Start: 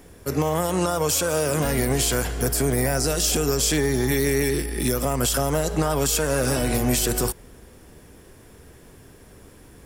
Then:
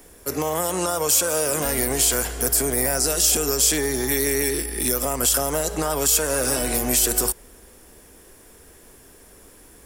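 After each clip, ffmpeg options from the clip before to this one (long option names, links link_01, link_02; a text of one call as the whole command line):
ffmpeg -i in.wav -filter_complex "[0:a]equalizer=frequency=120:width_type=o:width=1.6:gain=-10.5,acrossover=split=120|6400[link_01][link_02][link_03];[link_03]acontrast=85[link_04];[link_01][link_02][link_04]amix=inputs=3:normalize=0" out.wav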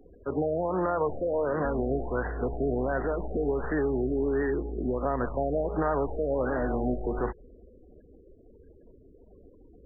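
ffmpeg -i in.wav -af "aeval=exprs='clip(val(0),-1,0.0944)':channel_layout=same,afftfilt=real='re*gte(hypot(re,im),0.00708)':imag='im*gte(hypot(re,im),0.00708)':win_size=1024:overlap=0.75,afftfilt=real='re*lt(b*sr/1024,730*pow(2000/730,0.5+0.5*sin(2*PI*1.4*pts/sr)))':imag='im*lt(b*sr/1024,730*pow(2000/730,0.5+0.5*sin(2*PI*1.4*pts/sr)))':win_size=1024:overlap=0.75,volume=-1.5dB" out.wav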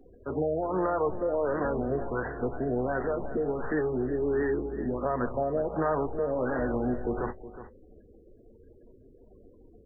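ffmpeg -i in.wav -af "flanger=delay=8.1:depth=1.5:regen=-51:speed=0.33:shape=triangular,aecho=1:1:366:0.211,volume=3.5dB" out.wav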